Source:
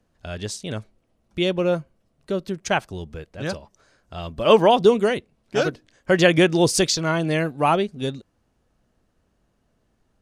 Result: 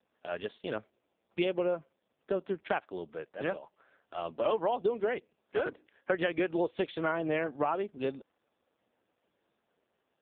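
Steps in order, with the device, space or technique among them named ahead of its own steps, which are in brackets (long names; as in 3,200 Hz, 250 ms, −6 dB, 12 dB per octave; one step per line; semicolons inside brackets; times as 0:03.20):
voicemail (band-pass filter 350–3,000 Hz; downward compressor 10 to 1, threshold −25 dBFS, peak gain reduction 15.5 dB; AMR narrowband 5.15 kbit/s 8,000 Hz)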